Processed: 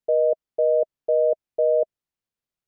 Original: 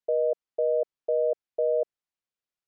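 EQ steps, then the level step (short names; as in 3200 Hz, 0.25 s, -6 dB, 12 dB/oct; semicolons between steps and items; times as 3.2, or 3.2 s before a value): dynamic EQ 630 Hz, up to +4 dB, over -38 dBFS, Q 6.6; low shelf 370 Hz +9.5 dB; 0.0 dB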